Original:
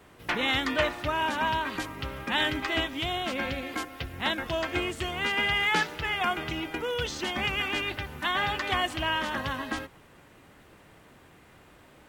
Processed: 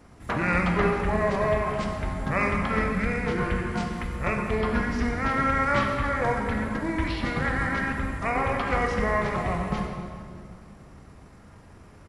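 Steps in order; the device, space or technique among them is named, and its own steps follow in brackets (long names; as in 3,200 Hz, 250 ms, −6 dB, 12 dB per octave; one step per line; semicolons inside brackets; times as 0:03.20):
monster voice (pitch shifter −7 semitones; low-shelf EQ 200 Hz +7.5 dB; convolution reverb RT60 2.2 s, pre-delay 14 ms, DRR 2 dB)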